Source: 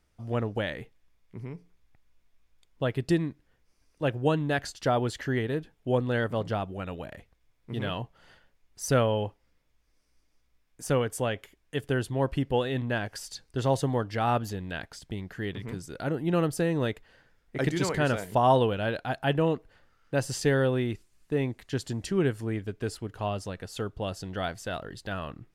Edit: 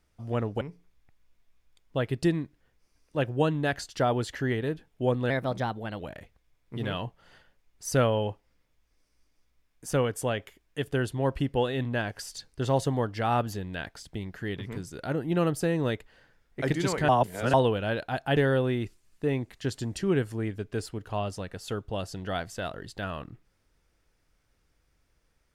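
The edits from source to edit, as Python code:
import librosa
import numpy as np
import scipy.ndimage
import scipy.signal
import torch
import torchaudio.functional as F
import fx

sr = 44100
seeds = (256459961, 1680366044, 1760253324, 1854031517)

y = fx.edit(x, sr, fx.cut(start_s=0.61, length_s=0.86),
    fx.speed_span(start_s=6.16, length_s=0.8, speed=1.15),
    fx.reverse_span(start_s=18.05, length_s=0.45),
    fx.cut(start_s=19.33, length_s=1.12), tone=tone)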